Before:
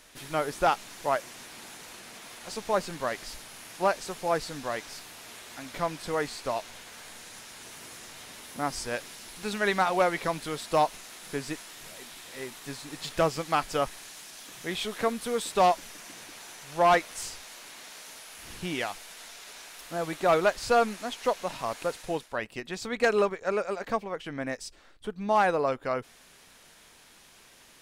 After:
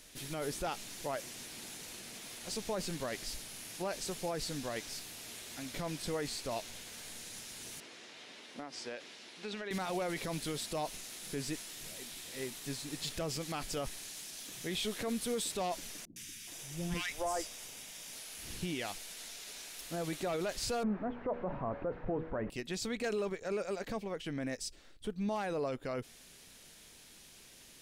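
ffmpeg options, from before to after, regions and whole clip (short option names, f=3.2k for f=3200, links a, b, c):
-filter_complex "[0:a]asettb=1/sr,asplit=3[a][b][c];[a]atrim=end=7.804[d];[b]atrim=start=7.8:end=9.71,asetpts=PTS-STARTPTS,afade=t=in:d=0.004:c=qsin,afade=t=out:st=1.906:d=0.004:c=qsin,highpass=300,lowpass=3.7k,acompressor=threshold=-34dB:ratio=6:attack=3.2:release=140:knee=1:detection=peak[e];[c]atrim=start=9.706[f];[d][e]acrossfade=d=0.004:c1=hsin:c2=qsin[g];[g][f]acrossfade=d=0.004:c1=qsin:c2=hsin,asettb=1/sr,asplit=3[h][i][j];[h]atrim=end=16.054[k];[i]atrim=start=16.05:end=18.13,asetpts=PTS-STARTPTS,afade=t=in:d=0.004:c=qsin,afade=t=out:st=2.076:d=0.004:c=qsin,bandreject=f=4.2k:w=7,acrossover=split=320|1500[l][m][n];[n]adelay=110[o];[m]adelay=420[p];[l][p][o]amix=inputs=3:normalize=0,atrim=end_sample=91728,asubboost=boost=2.5:cutoff=210[q];[j]atrim=start=18.126[r];[k][q]acrossfade=d=0.004:c1=hsin:c2=qsin[s];[s][r]acrossfade=d=0.004:c1=qsin:c2=hsin,asettb=1/sr,asplit=3[t][u][v];[t]atrim=end=20.834[w];[u]atrim=start=20.83:end=22.5,asetpts=PTS-STARTPTS,afade=t=in:d=0.004:c=qsin,afade=t=out:st=1.666:d=0.004:c=qsin,aeval=exprs='val(0)+0.5*0.0224*sgn(val(0))':c=same,lowpass=f=1.4k:w=0.5412,lowpass=f=1.4k:w=1.3066,bandreject=f=80.49:t=h:w=4,bandreject=f=160.98:t=h:w=4,bandreject=f=241.47:t=h:w=4,bandreject=f=321.96:t=h:w=4,bandreject=f=402.45:t=h:w=4,bandreject=f=482.94:t=h:w=4,bandreject=f=563.43:t=h:w=4[x];[v]atrim=start=22.496[y];[w][x]acrossfade=d=0.004:c1=hsin:c2=qsin[z];[z][y]acrossfade=d=0.004:c1=qsin:c2=hsin,equalizer=f=1.1k:w=0.67:g=-10,alimiter=level_in=4dB:limit=-24dB:level=0:latency=1:release=24,volume=-4dB,volume=1dB"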